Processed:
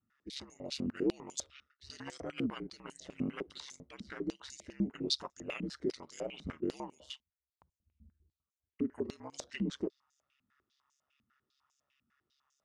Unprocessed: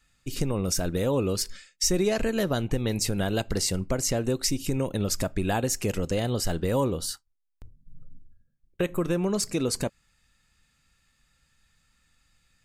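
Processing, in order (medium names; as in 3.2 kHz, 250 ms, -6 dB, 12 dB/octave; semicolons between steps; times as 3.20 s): formant shift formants -5 st; ring modulator 69 Hz; step-sequenced band-pass 10 Hz 230–6800 Hz; trim +4 dB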